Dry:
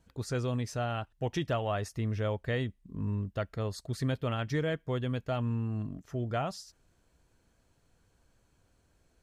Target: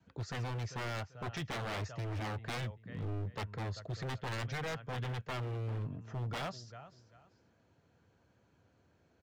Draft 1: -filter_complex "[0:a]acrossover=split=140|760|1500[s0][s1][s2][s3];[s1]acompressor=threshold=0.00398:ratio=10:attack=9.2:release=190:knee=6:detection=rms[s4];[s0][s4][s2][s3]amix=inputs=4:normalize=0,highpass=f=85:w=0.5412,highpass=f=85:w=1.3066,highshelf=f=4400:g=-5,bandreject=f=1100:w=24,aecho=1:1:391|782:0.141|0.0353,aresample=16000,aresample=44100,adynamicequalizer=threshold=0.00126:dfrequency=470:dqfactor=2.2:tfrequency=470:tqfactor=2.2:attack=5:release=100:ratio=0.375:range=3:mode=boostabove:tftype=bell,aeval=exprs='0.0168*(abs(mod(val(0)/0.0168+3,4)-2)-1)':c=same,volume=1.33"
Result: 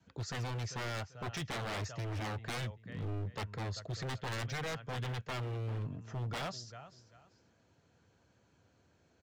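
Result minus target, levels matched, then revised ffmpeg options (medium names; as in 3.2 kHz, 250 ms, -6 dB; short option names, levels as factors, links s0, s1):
8 kHz band +4.5 dB
-filter_complex "[0:a]acrossover=split=140|760|1500[s0][s1][s2][s3];[s1]acompressor=threshold=0.00398:ratio=10:attack=9.2:release=190:knee=6:detection=rms[s4];[s0][s4][s2][s3]amix=inputs=4:normalize=0,highpass=f=85:w=0.5412,highpass=f=85:w=1.3066,highshelf=f=4400:g=-14.5,bandreject=f=1100:w=24,aecho=1:1:391|782:0.141|0.0353,aresample=16000,aresample=44100,adynamicequalizer=threshold=0.00126:dfrequency=470:dqfactor=2.2:tfrequency=470:tqfactor=2.2:attack=5:release=100:ratio=0.375:range=3:mode=boostabove:tftype=bell,aeval=exprs='0.0168*(abs(mod(val(0)/0.0168+3,4)-2)-1)':c=same,volume=1.33"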